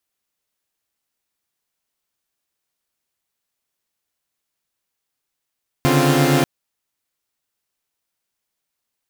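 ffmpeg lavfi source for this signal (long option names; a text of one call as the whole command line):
ffmpeg -f lavfi -i "aevalsrc='0.15*((2*mod(138.59*t,1)-1)+(2*mod(146.83*t,1)-1)+(2*mod(261.63*t,1)-1)+(2*mod(349.23*t,1)-1))':duration=0.59:sample_rate=44100" out.wav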